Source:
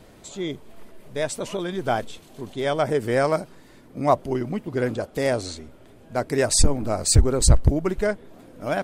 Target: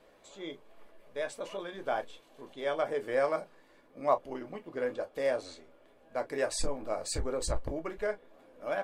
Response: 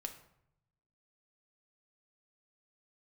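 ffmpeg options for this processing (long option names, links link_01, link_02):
-filter_complex "[0:a]bass=frequency=250:gain=-15,treble=frequency=4000:gain=-9[link_01];[1:a]atrim=start_sample=2205,atrim=end_sample=3528,asetrate=79380,aresample=44100[link_02];[link_01][link_02]afir=irnorm=-1:irlink=0"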